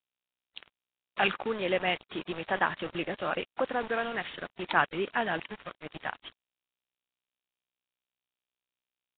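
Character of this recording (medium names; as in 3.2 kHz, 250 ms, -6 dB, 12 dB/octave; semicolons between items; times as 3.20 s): a quantiser's noise floor 6-bit, dither none; Nellymoser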